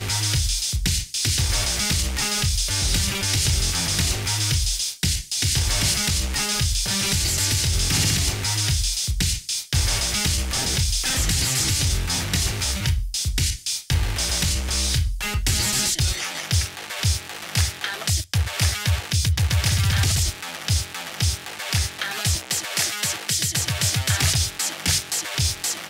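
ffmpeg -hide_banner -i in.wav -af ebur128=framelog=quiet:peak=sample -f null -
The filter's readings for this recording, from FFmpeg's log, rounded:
Integrated loudness:
  I:         -21.7 LUFS
  Threshold: -31.7 LUFS
Loudness range:
  LRA:         2.4 LU
  Threshold: -41.7 LUFS
  LRA low:   -23.0 LUFS
  LRA high:  -20.6 LUFS
Sample peak:
  Peak:      -11.5 dBFS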